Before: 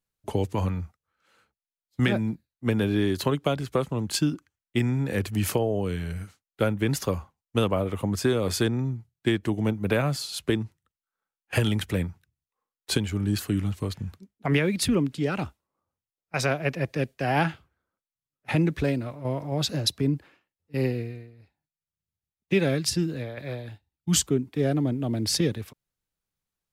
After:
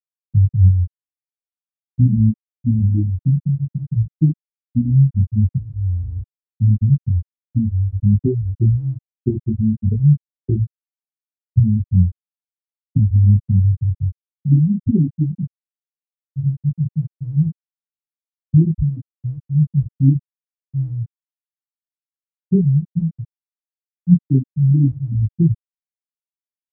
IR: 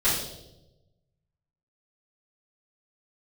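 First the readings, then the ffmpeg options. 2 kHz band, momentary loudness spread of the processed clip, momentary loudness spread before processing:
below −40 dB, 11 LU, 11 LU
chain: -af "aeval=exprs='val(0)+0.00355*(sin(2*PI*60*n/s)+sin(2*PI*2*60*n/s)/2+sin(2*PI*3*60*n/s)/3+sin(2*PI*4*60*n/s)/4+sin(2*PI*5*60*n/s)/5)':channel_layout=same,agate=range=-36dB:threshold=-48dB:ratio=16:detection=peak,bass=frequency=250:gain=13,treble=frequency=4000:gain=-10,afftfilt=real='re*gte(hypot(re,im),1.12)':imag='im*gte(hypot(re,im),1.12)':win_size=1024:overlap=0.75,flanger=delay=18.5:depth=4.1:speed=0.47,highshelf=frequency=5200:gain=11,volume=5.5dB"

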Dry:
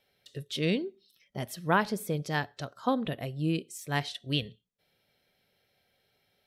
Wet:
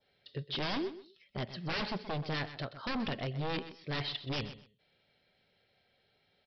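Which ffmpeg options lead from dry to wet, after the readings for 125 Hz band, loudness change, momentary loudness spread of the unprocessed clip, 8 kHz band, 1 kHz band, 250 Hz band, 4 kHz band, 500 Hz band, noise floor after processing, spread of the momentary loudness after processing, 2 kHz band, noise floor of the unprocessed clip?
−5.0 dB, −5.5 dB, 14 LU, below −15 dB, −7.5 dB, −7.0 dB, −1.5 dB, −6.0 dB, −74 dBFS, 10 LU, −5.5 dB, −74 dBFS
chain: -af "adynamicequalizer=threshold=0.00501:dfrequency=2500:dqfactor=1.5:tfrequency=2500:tqfactor=1.5:attack=5:release=100:ratio=0.375:range=2:mode=boostabove:tftype=bell,aresample=11025,aeval=exprs='0.0335*(abs(mod(val(0)/0.0335+3,4)-2)-1)':channel_layout=same,aresample=44100,aecho=1:1:127|254:0.224|0.0448"

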